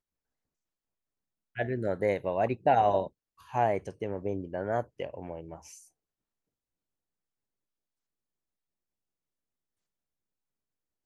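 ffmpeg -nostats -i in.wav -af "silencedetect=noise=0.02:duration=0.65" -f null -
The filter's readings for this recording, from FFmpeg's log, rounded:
silence_start: 0.00
silence_end: 1.57 | silence_duration: 1.57
silence_start: 5.55
silence_end: 11.06 | silence_duration: 5.51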